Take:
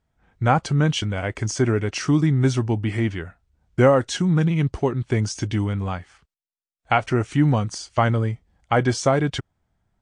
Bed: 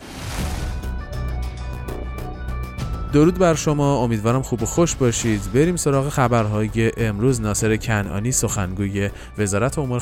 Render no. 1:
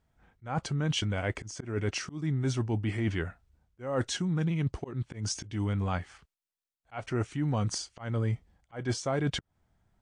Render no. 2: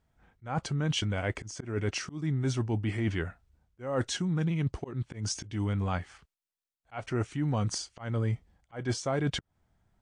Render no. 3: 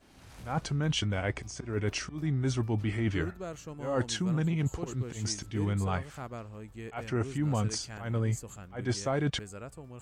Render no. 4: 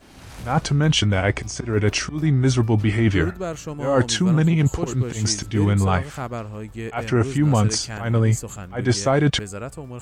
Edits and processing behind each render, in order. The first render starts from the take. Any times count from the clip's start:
reverse; compression 16:1, threshold -26 dBFS, peak gain reduction 16 dB; reverse; slow attack 189 ms
no audible change
add bed -24 dB
trim +11.5 dB

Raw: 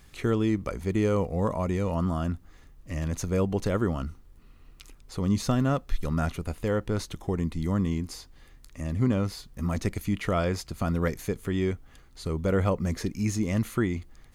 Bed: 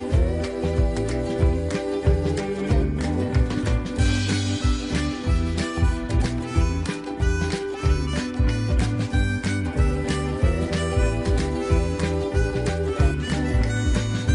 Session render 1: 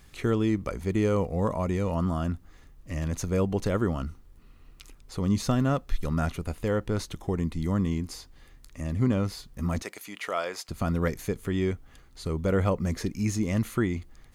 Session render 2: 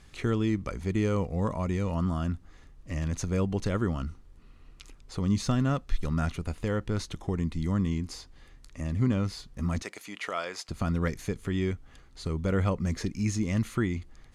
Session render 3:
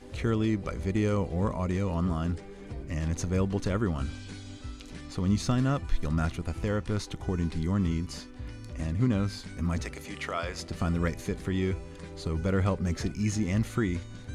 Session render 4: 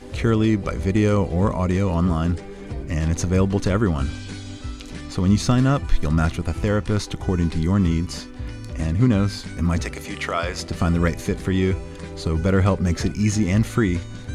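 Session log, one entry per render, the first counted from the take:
9.82–10.69 s: high-pass 580 Hz
low-pass 8.6 kHz 12 dB/octave; dynamic bell 580 Hz, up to -5 dB, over -38 dBFS, Q 0.72
add bed -19.5 dB
trim +8.5 dB

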